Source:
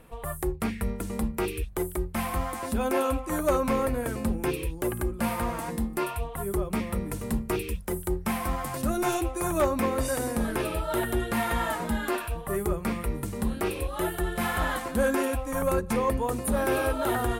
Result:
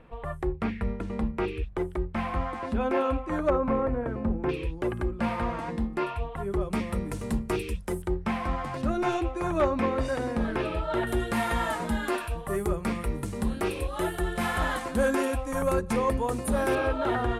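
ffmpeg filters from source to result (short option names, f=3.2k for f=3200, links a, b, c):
-af "asetnsamples=n=441:p=0,asendcmd='3.5 lowpass f 1400;4.49 lowpass f 3600;6.61 lowpass f 8200;8.02 lowpass f 3700;11.07 lowpass f 9400;16.75 lowpass f 3700',lowpass=2.9k"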